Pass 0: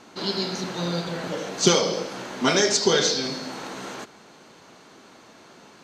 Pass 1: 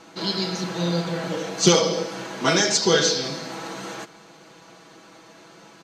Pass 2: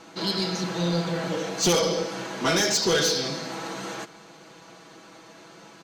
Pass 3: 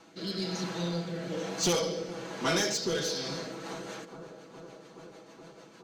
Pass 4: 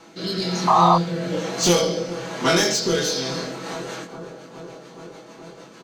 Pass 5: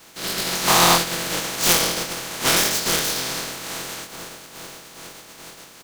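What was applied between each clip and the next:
comb 6.1 ms
soft clip -16.5 dBFS, distortion -11 dB
rotary speaker horn 1.1 Hz, later 6.7 Hz, at 3.23; analogue delay 0.419 s, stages 4096, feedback 79%, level -15 dB; gain -5 dB
painted sound noise, 0.67–0.96, 630–1300 Hz -24 dBFS; doubler 23 ms -3.5 dB; gain +7.5 dB
spectral contrast lowered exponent 0.29

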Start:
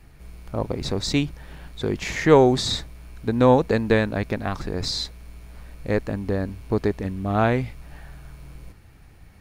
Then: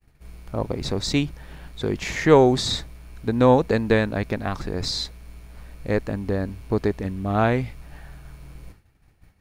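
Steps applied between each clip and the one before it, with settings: expander -40 dBFS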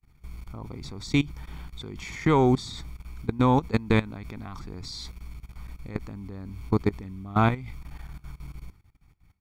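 comb 0.9 ms, depth 61%; level quantiser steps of 19 dB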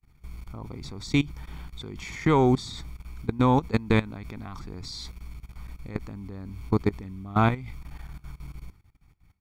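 nothing audible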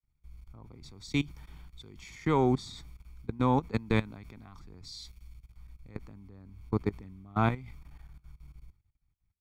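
three-band expander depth 40%; gain -7.5 dB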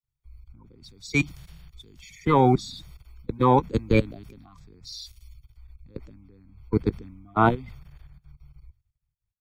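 bin magnitudes rounded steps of 30 dB; three-band expander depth 40%; gain +5.5 dB

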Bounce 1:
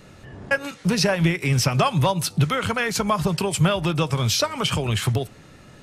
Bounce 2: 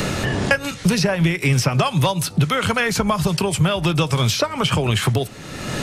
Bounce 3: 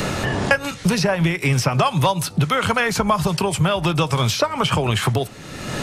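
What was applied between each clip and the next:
three-band squash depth 100%; gain +2 dB
dynamic EQ 920 Hz, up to +5 dB, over -32 dBFS, Q 0.99; gain -1.5 dB

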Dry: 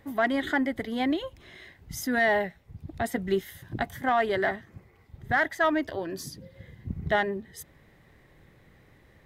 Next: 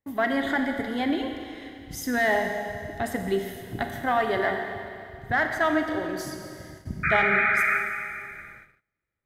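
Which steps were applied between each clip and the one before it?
painted sound noise, 7.03–7.78, 1200–2500 Hz -24 dBFS; Schroeder reverb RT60 2.5 s, combs from 29 ms, DRR 4 dB; gate -45 dBFS, range -32 dB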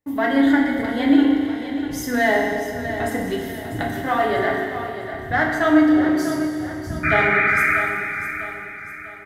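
on a send: feedback echo 0.647 s, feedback 43%, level -10.5 dB; on the sum: FDN reverb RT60 0.72 s, low-frequency decay 1.3×, high-frequency decay 0.65×, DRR 0 dB; gain +1.5 dB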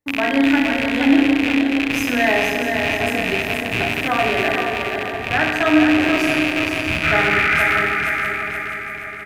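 rattling part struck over -31 dBFS, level -9 dBFS; feedback echo 0.474 s, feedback 47%, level -5 dB

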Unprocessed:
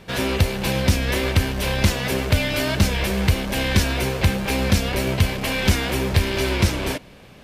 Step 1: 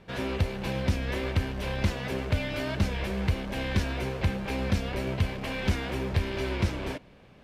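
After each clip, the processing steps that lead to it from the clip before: LPF 2500 Hz 6 dB/oct; gain -8 dB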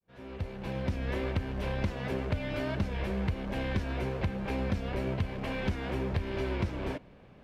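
opening faded in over 1.14 s; high shelf 2700 Hz -9.5 dB; compressor 4:1, threshold -27 dBFS, peak gain reduction 7 dB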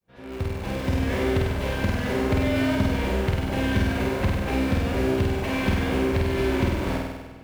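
in parallel at -11 dB: requantised 6-bit, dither none; on the sum: flutter echo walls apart 8.4 m, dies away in 1.2 s; gain +3.5 dB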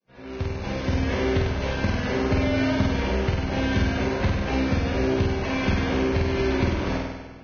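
Vorbis 16 kbps 16000 Hz

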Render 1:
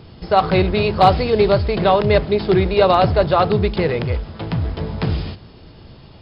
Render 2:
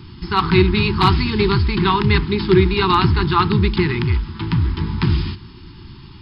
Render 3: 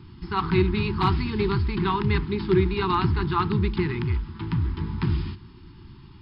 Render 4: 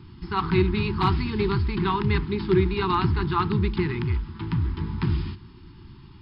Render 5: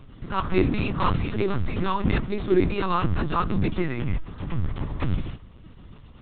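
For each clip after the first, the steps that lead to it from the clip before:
elliptic band-stop 370–910 Hz, stop band 50 dB; gain +4 dB
high shelf 3300 Hz -10 dB; gain -7 dB
nothing audible
LPC vocoder at 8 kHz pitch kept

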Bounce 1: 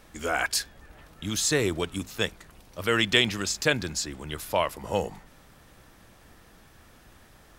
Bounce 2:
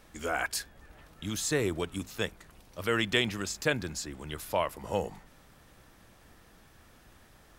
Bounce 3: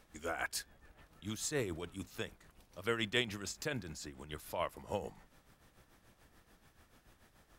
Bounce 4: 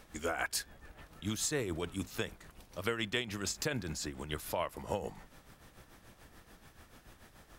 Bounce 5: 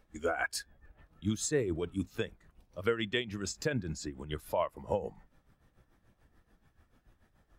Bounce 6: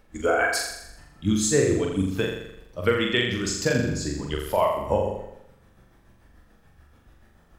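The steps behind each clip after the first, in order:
dynamic EQ 4600 Hz, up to -5 dB, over -40 dBFS, Q 0.7; gain -3.5 dB
tremolo 6.9 Hz, depth 60%; gain -5 dB
compressor 6:1, threshold -38 dBFS, peak gain reduction 11 dB; gain +7.5 dB
spectral expander 1.5:1
flutter echo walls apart 7.2 m, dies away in 0.82 s; gain +8 dB

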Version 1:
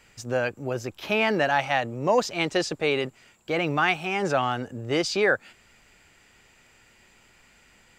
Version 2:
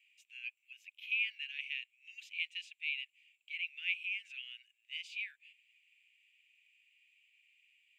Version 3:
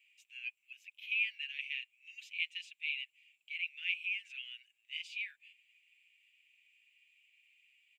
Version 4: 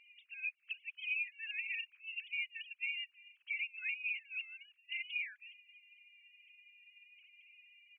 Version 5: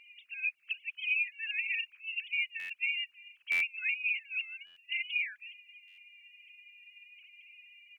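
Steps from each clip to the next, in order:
steep high-pass 2500 Hz 48 dB/oct; resonant high shelf 3500 Hz -12.5 dB, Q 3; gain -9 dB
comb 6.1 ms, depth 41%
sine-wave speech; compressor, threshold -45 dBFS, peak gain reduction 18 dB; gain +8.5 dB
stuck buffer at 2.59/3.51/4.66/5.87, samples 512, times 8; gain +6.5 dB

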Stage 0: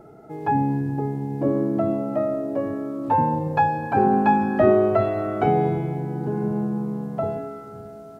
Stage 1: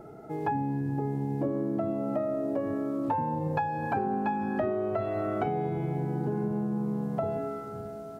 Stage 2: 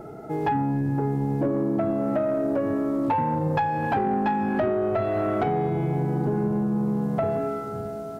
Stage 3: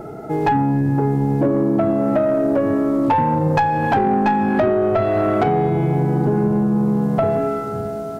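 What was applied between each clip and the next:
compressor 10:1, threshold -26 dBFS, peak gain reduction 14.5 dB
soft clip -23 dBFS, distortion -19 dB; gain +7 dB
tracing distortion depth 0.048 ms; gain +7 dB

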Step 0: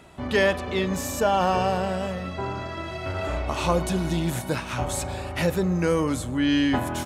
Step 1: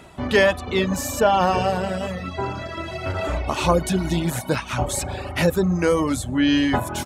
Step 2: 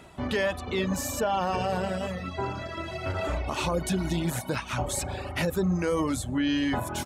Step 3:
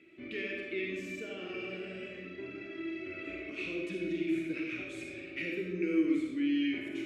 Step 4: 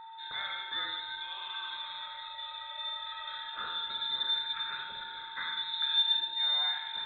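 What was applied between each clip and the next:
reverb removal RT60 0.79 s; gain +5 dB
limiter -14 dBFS, peak gain reduction 8.5 dB; gain -4.5 dB
double band-pass 880 Hz, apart 2.8 oct; reverb RT60 1.2 s, pre-delay 10 ms, DRR -1.5 dB
whine 3000 Hz -45 dBFS; inverted band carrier 3900 Hz

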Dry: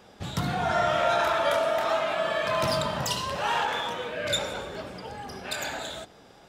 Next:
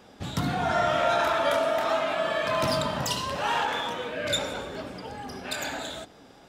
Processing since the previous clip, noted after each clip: bell 270 Hz +7 dB 0.32 oct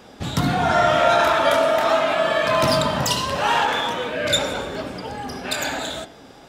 de-hum 95.71 Hz, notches 36; gain +7.5 dB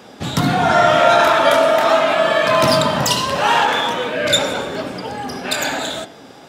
HPF 110 Hz 12 dB/oct; gain +4.5 dB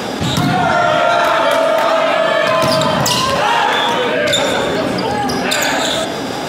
fast leveller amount 70%; gain -2 dB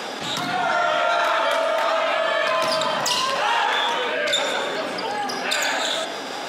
weighting filter A; gain -7 dB

